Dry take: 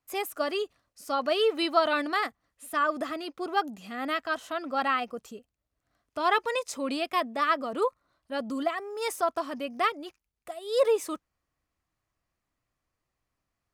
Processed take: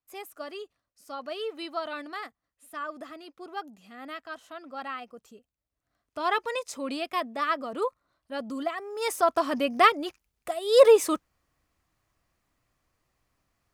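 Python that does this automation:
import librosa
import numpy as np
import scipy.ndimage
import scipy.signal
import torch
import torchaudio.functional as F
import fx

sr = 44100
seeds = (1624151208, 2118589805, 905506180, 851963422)

y = fx.gain(x, sr, db=fx.line((5.07, -9.5), (6.22, -2.0), (8.73, -2.0), (9.54, 7.5)))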